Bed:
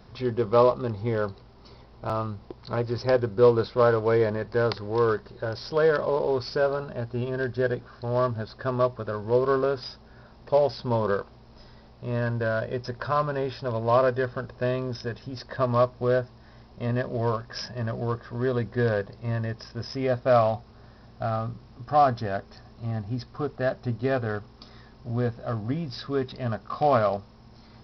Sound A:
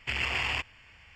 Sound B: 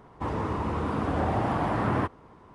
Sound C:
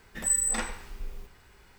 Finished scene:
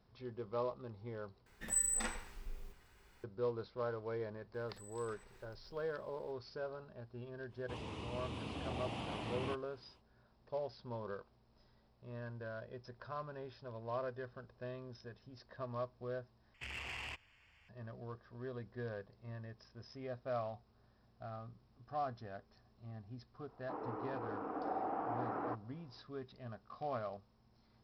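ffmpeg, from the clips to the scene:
-filter_complex "[3:a]asplit=2[a][b];[2:a]asplit=2[c][d];[0:a]volume=-19.5dB[e];[b]acompressor=threshold=-41dB:ratio=6:attack=3.2:release=140:knee=1:detection=peak[f];[c]highshelf=f=2.1k:t=q:w=3:g=9.5[g];[1:a]asoftclip=type=tanh:threshold=-26dB[h];[d]highpass=290,equalizer=f=300:t=q:w=4:g=8,equalizer=f=460:t=q:w=4:g=8,equalizer=f=760:t=q:w=4:g=10,equalizer=f=1.3k:t=q:w=4:g=6,equalizer=f=2k:t=q:w=4:g=-4,lowpass=f=2.4k:w=0.5412,lowpass=f=2.4k:w=1.3066[i];[e]asplit=3[j][k][l];[j]atrim=end=1.464[m];[a]atrim=end=1.78,asetpts=PTS-STARTPTS,volume=-8.5dB[n];[k]atrim=start=3.236:end=16.544[o];[h]atrim=end=1.15,asetpts=PTS-STARTPTS,volume=-12.5dB[p];[l]atrim=start=17.686[q];[f]atrim=end=1.78,asetpts=PTS-STARTPTS,volume=-16dB,afade=t=in:d=0.004:c=hsin,afade=t=out:st=1.776:d=0.004:c=hsin,adelay=4540[r];[g]atrim=end=2.54,asetpts=PTS-STARTPTS,volume=-16dB,afade=t=in:d=0.05,afade=t=out:st=2.49:d=0.05,adelay=7480[s];[i]atrim=end=2.54,asetpts=PTS-STARTPTS,volume=-17.5dB,afade=t=in:d=0.004:c=hsin,afade=t=out:st=2.536:d=0.004:c=hsin,adelay=23480[t];[m][n]acrossfade=d=0.004:c1=hsin:c2=hsin[u];[u][o]acrossfade=d=0.004:c1=hsin:c2=hsin[v];[v][p]acrossfade=d=0.004:c1=hsin:c2=hsin[w];[w][q]acrossfade=d=0.004:c1=hsin:c2=hsin[x];[x][r][s][t]amix=inputs=4:normalize=0"

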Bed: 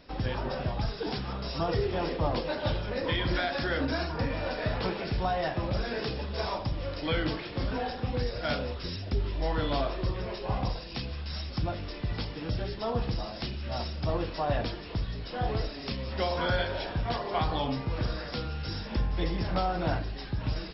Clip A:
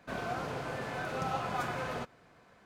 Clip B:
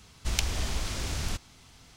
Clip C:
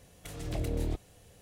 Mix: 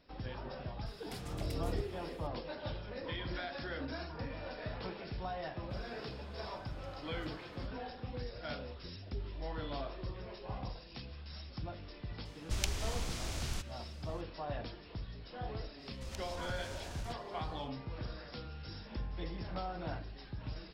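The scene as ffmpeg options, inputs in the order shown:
-filter_complex "[2:a]asplit=2[a][b];[0:a]volume=-11.5dB[c];[b]acompressor=threshold=-29dB:ratio=6:attack=3.2:release=140:knee=1:detection=peak[d];[3:a]atrim=end=1.41,asetpts=PTS-STARTPTS,volume=-5.5dB,afade=t=in:d=0.004:c=hsin,afade=t=out:st=1.406:d=0.004:c=hsin,adelay=860[e];[1:a]atrim=end=2.65,asetpts=PTS-STARTPTS,volume=-17.5dB,afade=t=in:d=0.004:c=hsin,afade=t=out:st=2.646:d=0.004:c=hsin,adelay=5620[f];[a]atrim=end=1.96,asetpts=PTS-STARTPTS,volume=-7dB,afade=t=in:d=0.004:c=hsin,afade=t=out:st=1.956:d=0.004:c=hsin,adelay=12250[g];[d]atrim=end=1.96,asetpts=PTS-STARTPTS,volume=-13.5dB,afade=t=in:d=0.1,afade=t=out:st=1.86:d=0.1,adelay=15760[h];[c][e][f][g][h]amix=inputs=5:normalize=0"

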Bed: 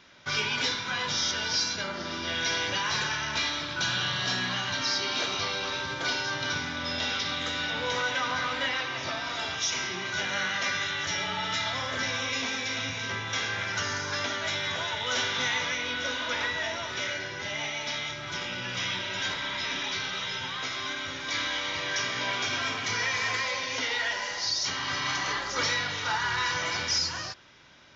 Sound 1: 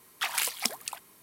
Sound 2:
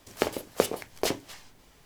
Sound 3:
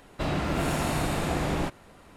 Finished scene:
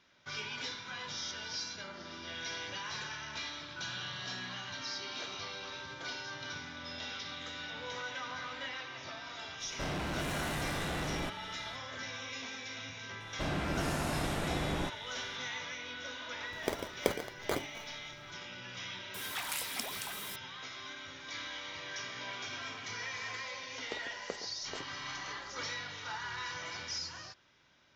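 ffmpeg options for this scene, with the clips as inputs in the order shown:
-filter_complex "[3:a]asplit=2[a][b];[2:a]asplit=2[c][d];[0:a]volume=-12dB[e];[a]asoftclip=type=hard:threshold=-31.5dB[f];[c]acrusher=samples=16:mix=1:aa=0.000001[g];[1:a]aeval=exprs='val(0)+0.5*0.0422*sgn(val(0))':c=same[h];[d]aresample=16000,aresample=44100[i];[f]atrim=end=2.16,asetpts=PTS-STARTPTS,volume=-3.5dB,afade=t=in:d=0.004:c=hsin,afade=t=out:st=2.156:d=0.004:c=hsin,adelay=9600[j];[b]atrim=end=2.16,asetpts=PTS-STARTPTS,volume=-7dB,afade=t=in:d=0.004:c=hsin,afade=t=out:st=2.156:d=0.004:c=hsin,adelay=13200[k];[g]atrim=end=1.85,asetpts=PTS-STARTPTS,volume=-6.5dB,afade=t=in:d=0.004:c=hsin,afade=t=out:st=1.846:d=0.004:c=hsin,adelay=16460[l];[h]atrim=end=1.22,asetpts=PTS-STARTPTS,volume=-12dB,afade=t=in:d=0.004:c=hsin,afade=t=out:st=1.216:d=0.004:c=hsin,adelay=19140[m];[i]atrim=end=1.85,asetpts=PTS-STARTPTS,volume=-17.5dB,afade=t=in:d=0.004:c=hsin,afade=t=out:st=1.846:d=0.004:c=hsin,adelay=23700[n];[e][j][k][l][m][n]amix=inputs=6:normalize=0"

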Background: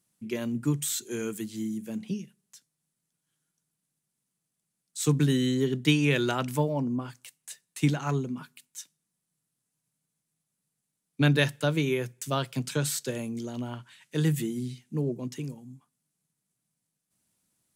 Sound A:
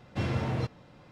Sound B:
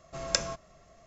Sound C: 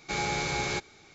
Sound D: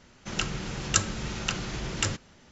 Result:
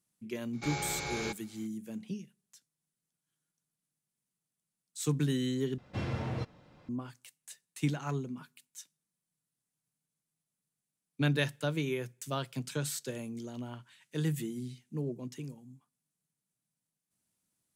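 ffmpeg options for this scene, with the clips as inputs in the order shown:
-filter_complex "[0:a]volume=-6.5dB,asplit=2[a][b];[a]atrim=end=5.784[c];[1:a]atrim=end=1.11,asetpts=PTS-STARTPTS,volume=-5dB[d];[b]atrim=start=6.886[e];[3:a]atrim=end=1.14,asetpts=PTS-STARTPTS,volume=-7dB,afade=t=in:d=0.004:c=hsin,afade=t=out:st=1.136:d=0.004:c=hsin,adelay=530[f];[c][d]acrossfade=d=0.004:c1=hsin:c2=hsin[g];[g][e]acrossfade=d=0.004:c1=hsin:c2=hsin[h];[h][f]amix=inputs=2:normalize=0"

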